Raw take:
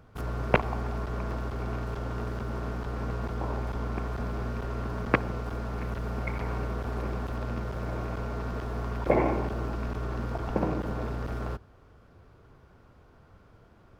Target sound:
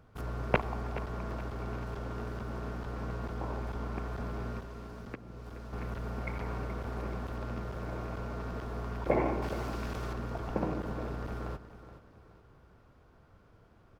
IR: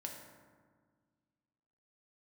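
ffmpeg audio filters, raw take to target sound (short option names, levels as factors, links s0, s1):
-filter_complex "[0:a]asettb=1/sr,asplit=3[s0][s1][s2];[s0]atrim=end=4.594[s3];[s1]atrim=start=4.59:end=5.73,asetpts=PTS-STARTPTS,afade=t=in:d=0.004:c=qsin,afade=t=out:st=1.136:d=0.004:c=qsin,acrossover=split=500|3000[s4][s5][s6];[s4]acompressor=threshold=0.0126:ratio=4[s7];[s5]acompressor=threshold=0.00355:ratio=4[s8];[s6]acompressor=threshold=0.00112:ratio=4[s9];[s7][s8][s9]amix=inputs=3:normalize=0[s10];[s2]atrim=start=5.726[s11];[s3][s10]acrossfade=d=0.004:c1=hsin:c2=qsin[s12];[s12][s11]acrossfade=d=0.004:c1=qsin:c2=hsin,asettb=1/sr,asplit=3[s13][s14][s15];[s13]atrim=end=9.424[s16];[s14]atrim=start=9.42:end=10.13,asetpts=PTS-STARTPTS,afade=t=in:d=0.004:c=qsin,afade=t=out:st=0.706:d=0.004:c=qsin,highshelf=f=2100:g=10.5[s17];[s15]atrim=start=10.126[s18];[s16][s17]acrossfade=d=0.004:c1=hsin:c2=qsin[s19];[s19][s18]acrossfade=d=0.004:c1=qsin:c2=hsin,aecho=1:1:424|848|1272|1696:0.211|0.0824|0.0321|0.0125,volume=0.596"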